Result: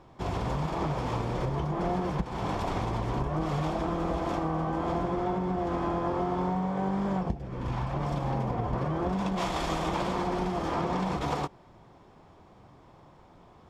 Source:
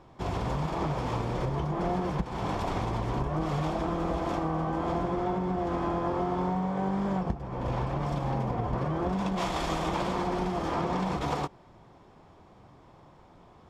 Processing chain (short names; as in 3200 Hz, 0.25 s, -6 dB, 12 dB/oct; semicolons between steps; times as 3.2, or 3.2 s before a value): 7.28–7.93 bell 1400 Hz -> 350 Hz -11.5 dB 0.68 oct